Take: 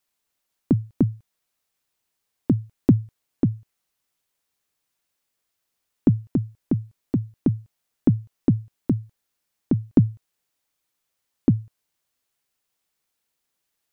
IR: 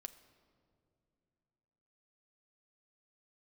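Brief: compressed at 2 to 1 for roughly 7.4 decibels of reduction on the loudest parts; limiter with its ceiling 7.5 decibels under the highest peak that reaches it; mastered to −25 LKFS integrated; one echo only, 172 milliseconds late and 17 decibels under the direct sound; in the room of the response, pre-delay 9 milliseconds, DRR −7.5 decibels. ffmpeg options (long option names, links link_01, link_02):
-filter_complex "[0:a]acompressor=threshold=-24dB:ratio=2,alimiter=limit=-15.5dB:level=0:latency=1,aecho=1:1:172:0.141,asplit=2[link_01][link_02];[1:a]atrim=start_sample=2205,adelay=9[link_03];[link_02][link_03]afir=irnorm=-1:irlink=0,volume=13dB[link_04];[link_01][link_04]amix=inputs=2:normalize=0,volume=-1dB"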